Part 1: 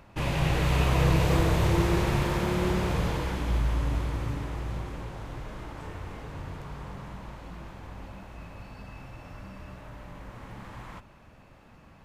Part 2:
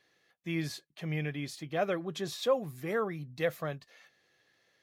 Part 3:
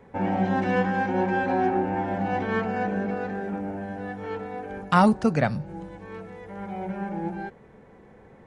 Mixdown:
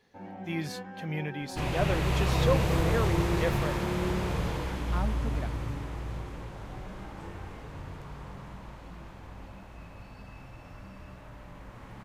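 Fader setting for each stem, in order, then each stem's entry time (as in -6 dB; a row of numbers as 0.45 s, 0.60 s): -3.0 dB, 0.0 dB, -18.0 dB; 1.40 s, 0.00 s, 0.00 s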